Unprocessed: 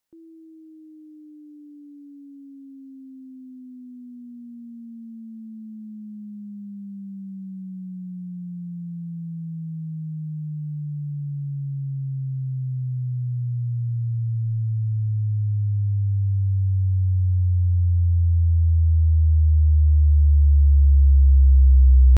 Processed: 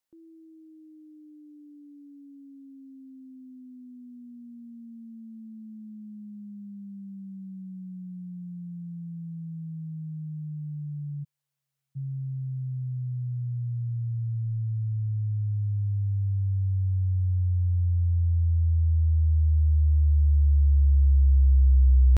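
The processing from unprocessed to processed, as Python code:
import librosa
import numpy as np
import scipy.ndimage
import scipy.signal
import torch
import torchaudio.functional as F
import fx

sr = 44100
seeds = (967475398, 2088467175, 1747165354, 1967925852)

y = fx.cheby2_highpass(x, sr, hz=160.0, order=4, stop_db=50, at=(11.23, 11.95), fade=0.02)
y = y * 10.0 ** (-5.0 / 20.0)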